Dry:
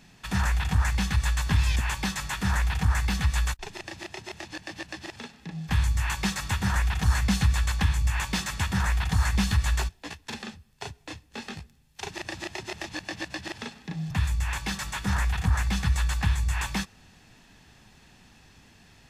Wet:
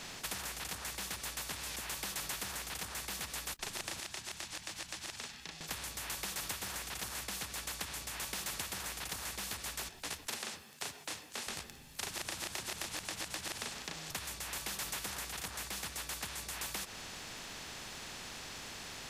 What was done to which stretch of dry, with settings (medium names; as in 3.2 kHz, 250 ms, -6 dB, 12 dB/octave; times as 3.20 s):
4.00–5.61 s: amplifier tone stack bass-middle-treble 5-5-5
10.27–11.47 s: high-pass 340 Hz
whole clip: compression, threshold -32 dBFS; spectrum-flattening compressor 4:1; trim -2 dB